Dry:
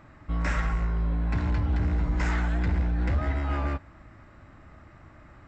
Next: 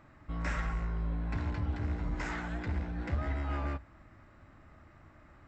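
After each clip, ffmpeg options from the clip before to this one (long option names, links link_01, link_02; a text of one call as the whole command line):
ffmpeg -i in.wav -af "bandreject=frequency=60:width_type=h:width=6,bandreject=frequency=120:width_type=h:width=6,bandreject=frequency=180:width_type=h:width=6,volume=-6dB" out.wav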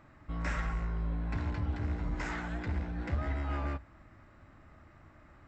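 ffmpeg -i in.wav -af anull out.wav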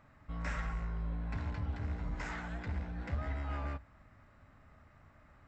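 ffmpeg -i in.wav -af "equalizer=frequency=330:width=6.6:gain=-12,volume=-3.5dB" out.wav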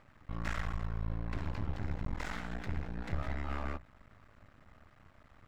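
ffmpeg -i in.wav -af "aeval=exprs='max(val(0),0)':channel_layout=same,volume=4.5dB" out.wav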